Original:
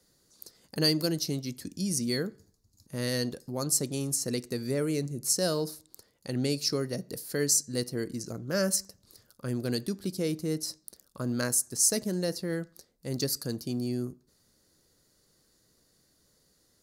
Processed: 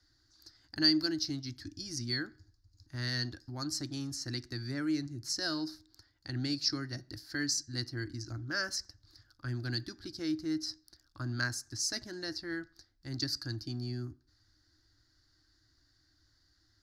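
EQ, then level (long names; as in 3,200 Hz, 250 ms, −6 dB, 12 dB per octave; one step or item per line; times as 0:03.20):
drawn EQ curve 110 Hz 0 dB, 190 Hz −27 dB, 310 Hz −3 dB, 460 Hz −29 dB, 740 Hz −11 dB, 1,100 Hz −11 dB, 1,600 Hz 0 dB, 2,500 Hz −13 dB, 4,900 Hz −3 dB, 8,900 Hz −26 dB
+4.5 dB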